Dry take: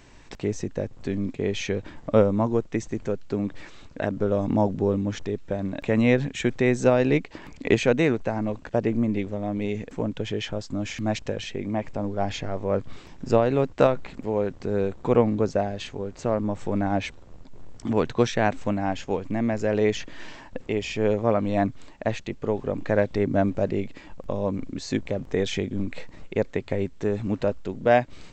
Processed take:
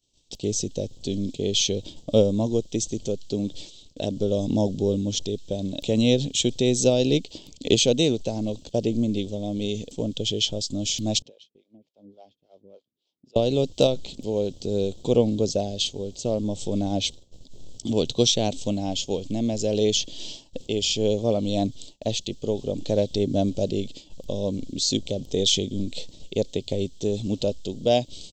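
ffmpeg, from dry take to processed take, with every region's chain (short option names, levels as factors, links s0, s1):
-filter_complex "[0:a]asettb=1/sr,asplit=3[s0][s1][s2];[s0]atrim=end=11.224[s3];[s1]atrim=start=11.22:end=13.36,asetpts=PTS-STARTPTS,afade=t=in:d=0.004:c=qsin,afade=t=out:st=2.136:d=0.004:c=qsin,acompressor=threshold=0.0178:ratio=4:attack=3.2:release=140:knee=1:detection=peak,highpass=200,lowpass=3700,acrossover=split=450[s4][s5];[s4]aeval=exprs='val(0)*(1-1/2+1/2*cos(2*PI*3.5*n/s))':c=same[s6];[s5]aeval=exprs='val(0)*(1-1/2-1/2*cos(2*PI*3.5*n/s))':c=same[s7];[s6][s7]amix=inputs=2:normalize=0[s8];[s2]atrim=start=13.356[s9];[s3][s8]acrossfade=d=0.004:c1=hsin:c2=qsin[s10];[s10][s9]acrossfade=d=0.004:c1=qsin:c2=hsin,agate=range=0.0224:threshold=0.0158:ratio=3:detection=peak,firequalizer=gain_entry='entry(560,0);entry(1100,-17);entry(1700,-25);entry(3200,14)':delay=0.05:min_phase=1"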